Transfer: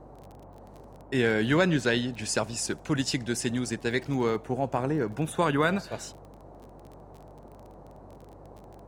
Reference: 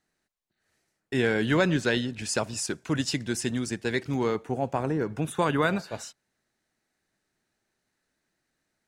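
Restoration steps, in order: de-click; de-hum 48.7 Hz, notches 3; noise print and reduce 30 dB

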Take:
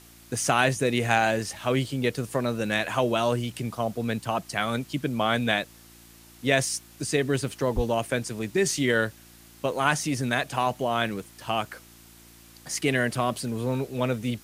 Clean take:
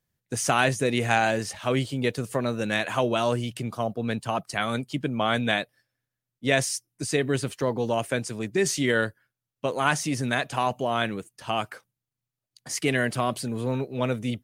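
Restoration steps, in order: de-hum 57.3 Hz, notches 6; 7.75–7.87 HPF 140 Hz 24 dB/oct; noise print and reduce 30 dB

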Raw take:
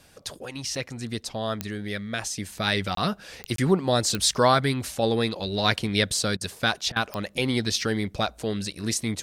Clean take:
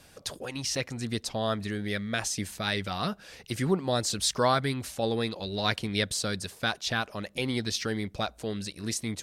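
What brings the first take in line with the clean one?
de-click; interpolate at 2.95/3.56, 23 ms; interpolate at 6.37/6.92, 39 ms; gain correction -5 dB, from 2.57

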